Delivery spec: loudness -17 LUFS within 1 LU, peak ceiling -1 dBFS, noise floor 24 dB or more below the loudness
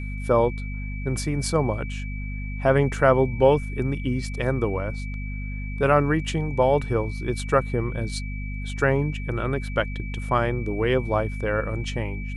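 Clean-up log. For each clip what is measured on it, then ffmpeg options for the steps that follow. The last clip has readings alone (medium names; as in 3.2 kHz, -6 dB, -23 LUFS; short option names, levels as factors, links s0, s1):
hum 50 Hz; highest harmonic 250 Hz; hum level -28 dBFS; steady tone 2.3 kHz; tone level -39 dBFS; loudness -24.5 LUFS; peak level -5.5 dBFS; loudness target -17.0 LUFS
-> -af "bandreject=f=50:t=h:w=6,bandreject=f=100:t=h:w=6,bandreject=f=150:t=h:w=6,bandreject=f=200:t=h:w=6,bandreject=f=250:t=h:w=6"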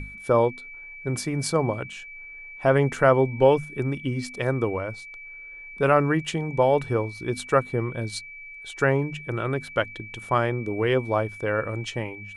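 hum not found; steady tone 2.3 kHz; tone level -39 dBFS
-> -af "bandreject=f=2300:w=30"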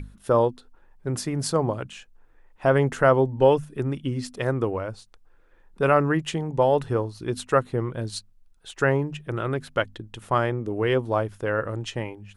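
steady tone not found; loudness -24.5 LUFS; peak level -5.5 dBFS; loudness target -17.0 LUFS
-> -af "volume=2.37,alimiter=limit=0.891:level=0:latency=1"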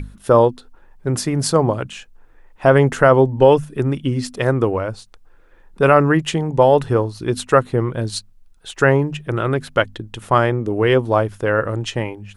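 loudness -17.5 LUFS; peak level -1.0 dBFS; noise floor -49 dBFS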